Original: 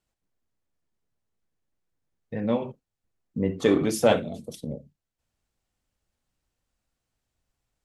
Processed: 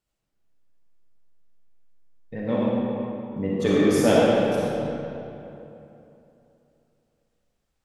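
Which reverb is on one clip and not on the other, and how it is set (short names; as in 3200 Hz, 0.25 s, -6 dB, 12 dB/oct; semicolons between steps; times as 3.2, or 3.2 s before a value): digital reverb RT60 3 s, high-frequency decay 0.65×, pre-delay 15 ms, DRR -6 dB; gain -3 dB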